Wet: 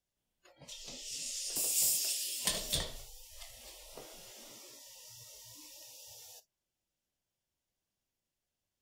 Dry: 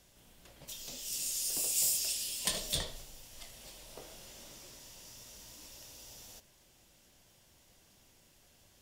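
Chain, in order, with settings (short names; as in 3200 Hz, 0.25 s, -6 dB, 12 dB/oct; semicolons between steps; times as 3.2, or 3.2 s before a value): spectral noise reduction 25 dB; 0.52–1.56 LPF 6700 Hz 12 dB/oct; 4.86–5.84 low shelf 260 Hz +7 dB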